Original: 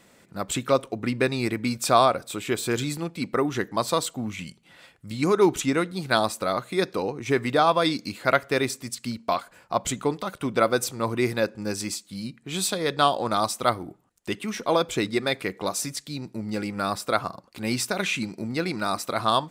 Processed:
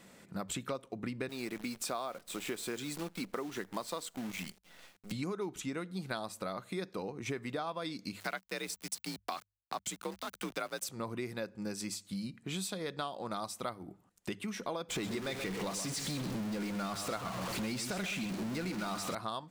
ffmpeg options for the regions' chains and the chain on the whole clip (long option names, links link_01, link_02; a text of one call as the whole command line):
ffmpeg -i in.wav -filter_complex "[0:a]asettb=1/sr,asplit=3[link_01][link_02][link_03];[link_01]atrim=end=1.294[link_04];[link_02]atrim=start=1.29:end=5.12,asetpts=PTS-STARTPTS,afade=type=in:duration=0.004:curve=qsin,afade=type=out:start_time=3.826:duration=0.004:curve=qsin,highpass=210,acrusher=bits=7:dc=4:mix=0:aa=0.000001[link_05];[link_03]atrim=start=5.116[link_06];[link_04][link_05]acrossfade=duration=0.004:curve1=hsin:curve2=qsin[link_07];[link_07][link_06]acrossfade=duration=0.004:curve1=qsin:curve2=hsin,asettb=1/sr,asplit=3[link_08][link_09][link_10];[link_08]atrim=end=8.204[link_11];[link_09]atrim=start=8.2:end=10.89,asetpts=PTS-STARTPTS,afade=type=in:duration=0.004:curve=qsin,afade=type=out:start_time=2.686:duration=0.004:curve=qsin,tiltshelf=frequency=1400:gain=-4.5,aeval=exprs='val(0)*gte(abs(val(0)),0.02)':channel_layout=same,afreqshift=48[link_12];[link_10]atrim=start=10.886[link_13];[link_11][link_12]acrossfade=duration=0.004:curve1=hsin:curve2=qsin[link_14];[link_14][link_13]acrossfade=duration=0.004:curve1=qsin:curve2=hsin,asettb=1/sr,asplit=3[link_15][link_16][link_17];[link_15]atrim=end=14.904[link_18];[link_16]atrim=start=14.9:end=19.15,asetpts=PTS-STARTPTS,afade=type=in:duration=0.004:curve=qsin,afade=type=out:start_time=4.246:duration=0.004:curve=qsin,aeval=exprs='val(0)+0.5*0.075*sgn(val(0))':channel_layout=same,acrossover=split=9900[link_19][link_20];[link_20]acompressor=threshold=-39dB:ratio=4:attack=1:release=60[link_21];[link_19][link_21]amix=inputs=2:normalize=0,aecho=1:1:129:0.316,atrim=end_sample=187425[link_22];[link_17]atrim=start=19.146[link_23];[link_18][link_22]acrossfade=duration=0.004:curve1=hsin:curve2=qsin[link_24];[link_24][link_23]acrossfade=duration=0.004:curve1=qsin:curve2=hsin,equalizer=frequency=190:width_type=o:width=0.26:gain=6,bandreject=frequency=50:width_type=h:width=6,bandreject=frequency=100:width_type=h:width=6,acompressor=threshold=-34dB:ratio=6,volume=-2dB" out.wav